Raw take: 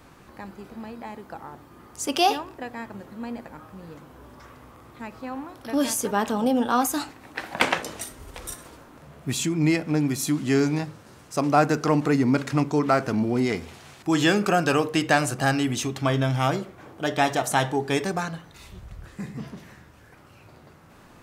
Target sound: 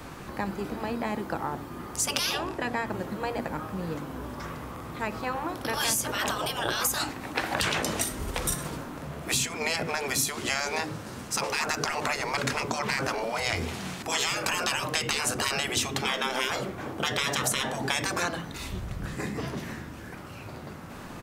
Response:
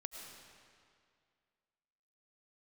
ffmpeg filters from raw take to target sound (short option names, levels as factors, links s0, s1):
-filter_complex "[0:a]asettb=1/sr,asplit=3[s0][s1][s2];[s0]atrim=end=2.334[s3];[s1]atrim=start=2.33:end=2.86,asetpts=PTS-STARTPTS,afade=t=in:d=0.004:c=qsin,afade=t=out:st=0.526:d=0.004:c=qsin,lowpass=12000[s4];[s2]atrim=start=2.856[s5];[s3][s4]acrossfade=d=0.004:c1=hsin:c2=qsin[s6];[s6][s5]acrossfade=d=0.004:c1=qsin:c2=hsin,afftfilt=real='re*lt(hypot(re,im),0.126)':imag='im*lt(hypot(re,im),0.126)':win_size=1024:overlap=0.75,acrossover=split=190[s7][s8];[s7]asplit=5[s9][s10][s11][s12][s13];[s10]adelay=257,afreqshift=100,volume=0.596[s14];[s11]adelay=514,afreqshift=200,volume=0.191[s15];[s12]adelay=771,afreqshift=300,volume=0.061[s16];[s13]adelay=1028,afreqshift=400,volume=0.0195[s17];[s9][s14][s15][s16][s17]amix=inputs=5:normalize=0[s18];[s8]acompressor=threshold=0.0224:ratio=6[s19];[s18][s19]amix=inputs=2:normalize=0,volume=2.82"